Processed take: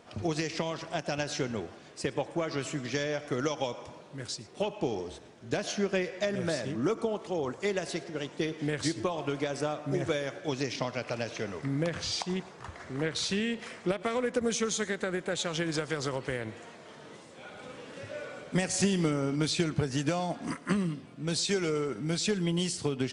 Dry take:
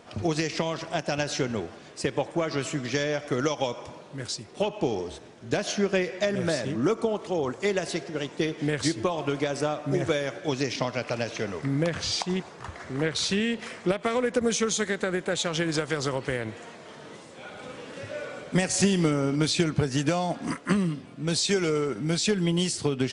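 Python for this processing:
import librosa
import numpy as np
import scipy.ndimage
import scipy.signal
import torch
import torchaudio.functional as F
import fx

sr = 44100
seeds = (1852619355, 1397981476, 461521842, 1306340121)

y = x + 10.0 ** (-21.5 / 20.0) * np.pad(x, (int(113 * sr / 1000.0), 0))[:len(x)]
y = y * librosa.db_to_amplitude(-4.5)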